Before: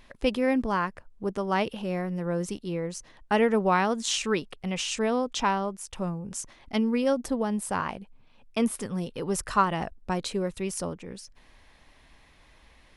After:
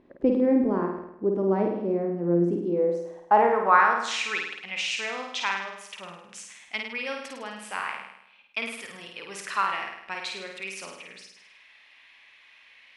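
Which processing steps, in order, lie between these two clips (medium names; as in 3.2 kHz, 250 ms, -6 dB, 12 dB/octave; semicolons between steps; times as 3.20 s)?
dynamic bell 3 kHz, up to -7 dB, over -52 dBFS, Q 4.9; band-pass sweep 330 Hz -> 2.5 kHz, 2.54–4.32 s; flutter echo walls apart 8.9 m, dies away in 0.79 s; trim +9 dB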